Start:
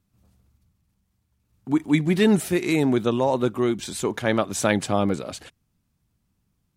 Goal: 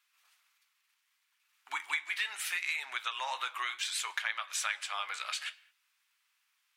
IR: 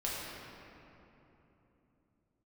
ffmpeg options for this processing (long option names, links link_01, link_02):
-filter_complex "[0:a]highpass=frequency=1100:width=0.5412,highpass=frequency=1100:width=1.3066,equalizer=frequency=2400:width=0.74:gain=10.5,acompressor=threshold=-34dB:ratio=5,flanger=delay=7.8:depth=8.3:regen=-60:speed=0.68:shape=triangular,asplit=2[link_01][link_02];[1:a]atrim=start_sample=2205,afade=type=out:start_time=0.27:duration=0.01,atrim=end_sample=12348[link_03];[link_02][link_03]afir=irnorm=-1:irlink=0,volume=-20dB[link_04];[link_01][link_04]amix=inputs=2:normalize=0,volume=5dB"